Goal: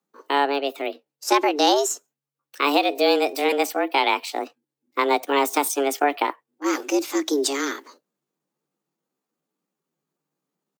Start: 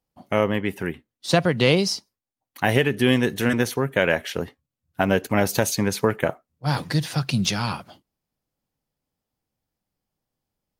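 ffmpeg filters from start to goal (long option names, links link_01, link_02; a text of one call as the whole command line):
ffmpeg -i in.wav -af "asetrate=58866,aresample=44100,atempo=0.749154,afreqshift=140" out.wav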